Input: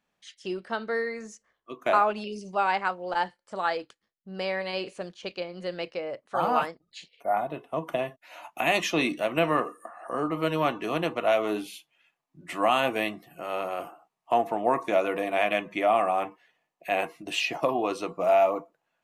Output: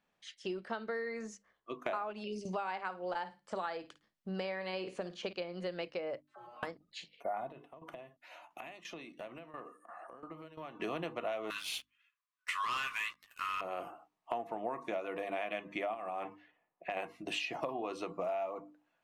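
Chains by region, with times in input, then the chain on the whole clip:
0:02.45–0:05.33: flutter between parallel walls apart 9.2 metres, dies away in 0.21 s + multiband upward and downward compressor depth 40%
0:06.22–0:06.63: tuned comb filter 120 Hz, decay 0.35 s, harmonics odd, mix 100% + downward compressor, threshold −49 dBFS + all-pass dispersion lows, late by 44 ms, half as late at 540 Hz
0:07.47–0:10.80: downward compressor 5 to 1, threshold −41 dBFS + shaped tremolo saw down 2.9 Hz, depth 80%
0:11.50–0:13.61: linear-phase brick-wall high-pass 970 Hz + leveller curve on the samples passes 3
0:15.94–0:16.97: low-pass that shuts in the quiet parts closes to 1,700 Hz, open at −25 dBFS + downward compressor 4 to 1, threshold −27 dBFS
whole clip: high-shelf EQ 8,400 Hz −11.5 dB; mains-hum notches 50/100/150/200/250/300 Hz; downward compressor 6 to 1, threshold −34 dBFS; level −1 dB

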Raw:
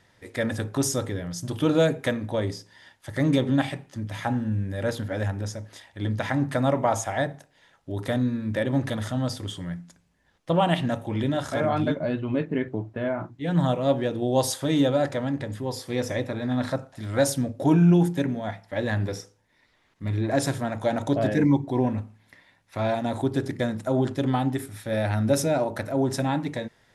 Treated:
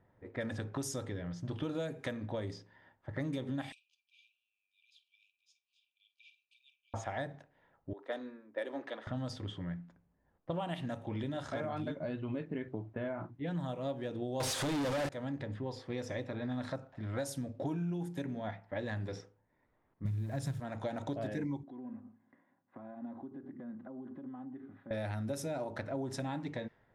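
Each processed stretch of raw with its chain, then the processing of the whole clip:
0:03.72–0:06.94: linear-phase brick-wall high-pass 2,300 Hz + high-shelf EQ 9,800 Hz +2.5 dB + double-tracking delay 49 ms −14 dB
0:07.93–0:09.07: high-pass filter 340 Hz 24 dB per octave + multiband upward and downward expander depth 100%
0:14.40–0:15.09: linear delta modulator 64 kbit/s, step −31.5 dBFS + high-shelf EQ 10,000 Hz −9 dB + leveller curve on the samples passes 5
0:20.05–0:20.60: hold until the input has moved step −42 dBFS + low shelf with overshoot 230 Hz +10 dB, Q 1.5
0:21.63–0:24.91: downward compressor 16 to 1, threshold −36 dBFS + loudspeaker in its box 230–3,200 Hz, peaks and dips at 240 Hz +9 dB, 630 Hz −6 dB, 2,400 Hz −7 dB + notch comb filter 450 Hz
whole clip: low-pass that shuts in the quiet parts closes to 960 Hz, open at −20 dBFS; downward compressor 6 to 1, threshold −29 dBFS; level −5.5 dB

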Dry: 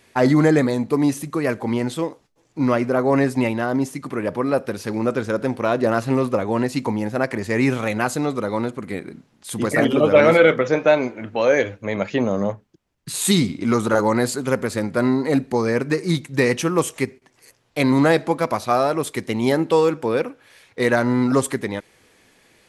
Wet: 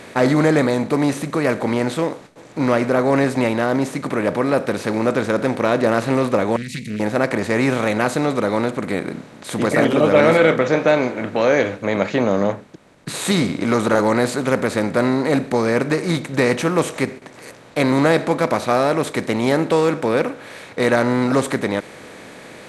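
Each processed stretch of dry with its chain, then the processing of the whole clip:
0:06.56–0:07.00: downward compressor 3 to 1, threshold −24 dBFS + linear-phase brick-wall band-stop 240–1,900 Hz + highs frequency-modulated by the lows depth 0.29 ms
whole clip: compressor on every frequency bin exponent 0.6; high-shelf EQ 8,500 Hz −9 dB; level −2.5 dB

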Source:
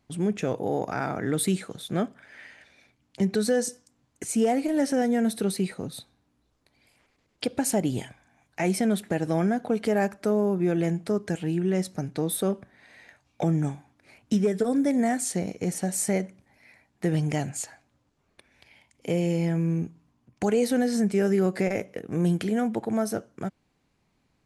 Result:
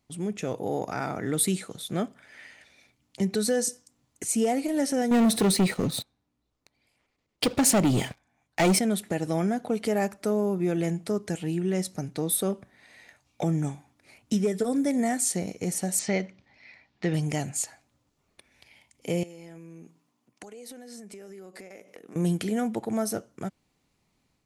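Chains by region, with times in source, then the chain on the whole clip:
0:05.11–0:08.79: high-shelf EQ 6,600 Hz −11 dB + leveller curve on the samples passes 3
0:15.99–0:17.14: low-pass filter 4,900 Hz 24 dB per octave + parametric band 3,800 Hz +6 dB 2.9 octaves
0:19.23–0:22.16: high-pass filter 260 Hz + downward compressor 16 to 1, threshold −39 dBFS
whole clip: high-shelf EQ 4,200 Hz +7.5 dB; notch filter 1,600 Hz, Q 14; automatic gain control gain up to 3.5 dB; level −5.5 dB

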